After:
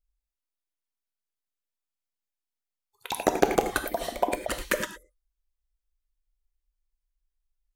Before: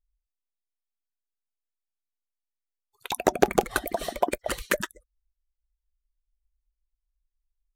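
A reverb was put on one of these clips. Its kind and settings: non-linear reverb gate 0.13 s flat, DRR 7 dB; gain -1.5 dB

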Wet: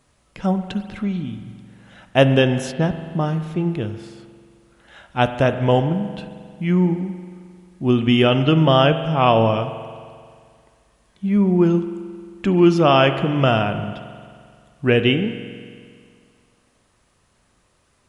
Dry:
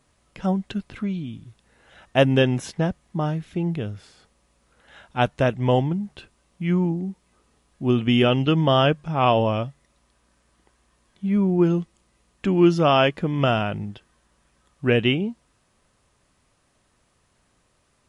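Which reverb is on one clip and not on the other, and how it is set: spring tank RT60 2.1 s, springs 44 ms, chirp 30 ms, DRR 9.5 dB; gain +3 dB

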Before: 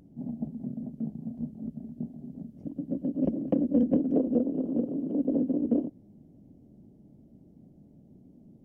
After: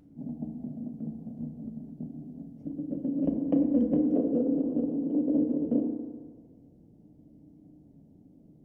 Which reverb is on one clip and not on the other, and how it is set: FDN reverb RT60 1.7 s, low-frequency decay 0.8×, high-frequency decay 0.4×, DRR 3 dB; gain -3 dB

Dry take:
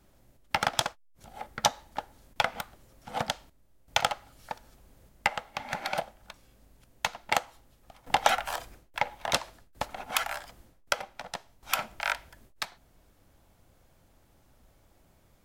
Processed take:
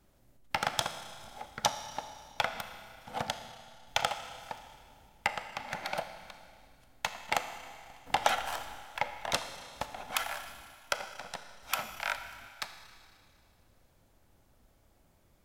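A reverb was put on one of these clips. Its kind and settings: Schroeder reverb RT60 2.2 s, combs from 26 ms, DRR 8.5 dB; gain -4 dB

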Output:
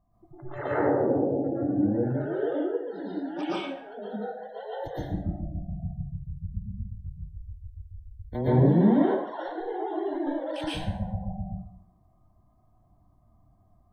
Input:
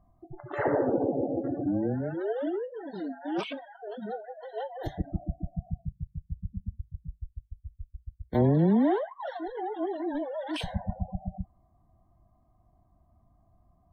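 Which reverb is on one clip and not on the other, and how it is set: plate-style reverb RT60 0.66 s, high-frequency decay 0.8×, pre-delay 0.105 s, DRR -9 dB; gain -7.5 dB

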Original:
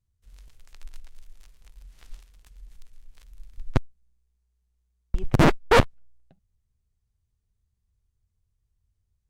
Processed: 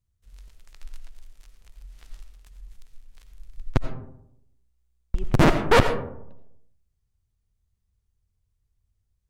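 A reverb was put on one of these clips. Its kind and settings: digital reverb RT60 0.78 s, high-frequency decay 0.35×, pre-delay 45 ms, DRR 8 dB

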